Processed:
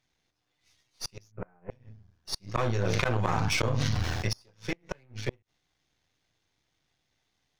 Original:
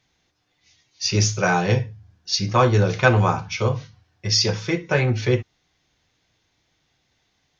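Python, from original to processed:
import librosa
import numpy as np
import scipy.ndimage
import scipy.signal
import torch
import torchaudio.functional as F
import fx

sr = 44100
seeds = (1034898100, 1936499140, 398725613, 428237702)

y = np.where(x < 0.0, 10.0 ** (-12.0 / 20.0) * x, x)
y = fx.rider(y, sr, range_db=4, speed_s=0.5)
y = fx.gate_flip(y, sr, shuts_db=-11.0, range_db=-33)
y = fx.bessel_lowpass(y, sr, hz=1200.0, order=8, at=(1.3, 1.7), fade=0.02)
y = fx.env_flatten(y, sr, amount_pct=100, at=(2.55, 4.29))
y = F.gain(torch.from_numpy(y), -5.5).numpy()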